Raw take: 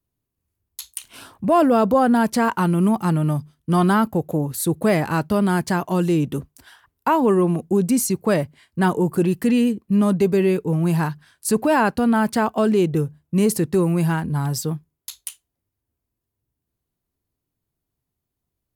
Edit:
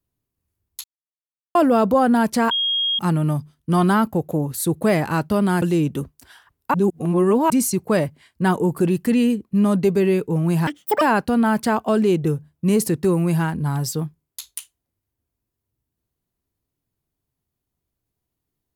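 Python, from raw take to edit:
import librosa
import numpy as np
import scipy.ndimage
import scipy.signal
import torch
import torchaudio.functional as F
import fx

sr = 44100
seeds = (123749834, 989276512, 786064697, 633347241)

y = fx.edit(x, sr, fx.silence(start_s=0.84, length_s=0.71),
    fx.bleep(start_s=2.51, length_s=0.48, hz=3260.0, db=-18.0),
    fx.cut(start_s=5.62, length_s=0.37),
    fx.reverse_span(start_s=7.11, length_s=0.76),
    fx.speed_span(start_s=11.04, length_s=0.67, speed=1.95), tone=tone)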